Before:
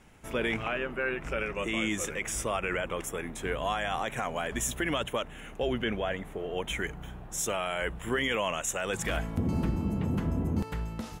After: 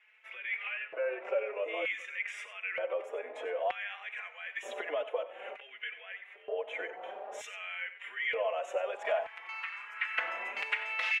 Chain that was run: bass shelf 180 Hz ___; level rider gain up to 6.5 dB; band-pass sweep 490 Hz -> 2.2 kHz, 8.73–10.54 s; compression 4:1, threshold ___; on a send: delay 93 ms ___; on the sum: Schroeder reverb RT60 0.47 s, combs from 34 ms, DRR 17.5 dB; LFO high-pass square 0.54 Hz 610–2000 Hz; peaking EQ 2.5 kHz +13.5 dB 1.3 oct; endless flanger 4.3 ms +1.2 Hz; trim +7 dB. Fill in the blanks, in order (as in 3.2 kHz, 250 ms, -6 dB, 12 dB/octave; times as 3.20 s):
-11.5 dB, -42 dBFS, -13.5 dB